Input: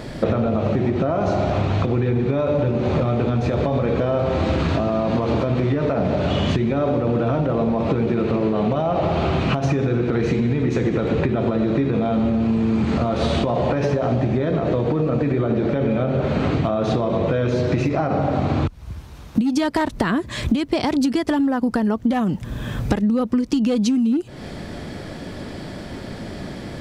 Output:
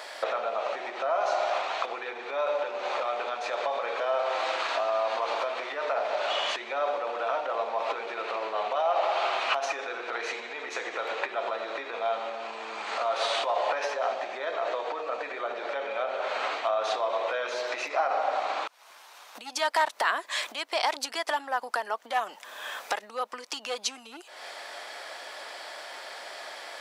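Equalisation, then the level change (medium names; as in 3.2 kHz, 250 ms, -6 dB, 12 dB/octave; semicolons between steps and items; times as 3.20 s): high-pass 690 Hz 24 dB/octave; 0.0 dB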